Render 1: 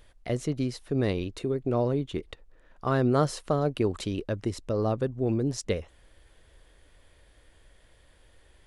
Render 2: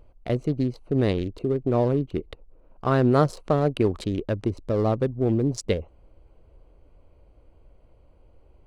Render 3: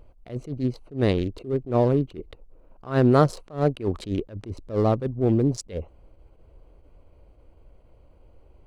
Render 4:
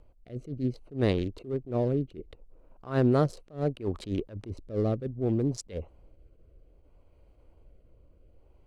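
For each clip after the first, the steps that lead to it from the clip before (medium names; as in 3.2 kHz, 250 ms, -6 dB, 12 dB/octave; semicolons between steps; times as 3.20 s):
local Wiener filter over 25 samples; trim +4.5 dB
attacks held to a fixed rise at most 200 dB/s; trim +2 dB
rotary cabinet horn 0.65 Hz; trim -3.5 dB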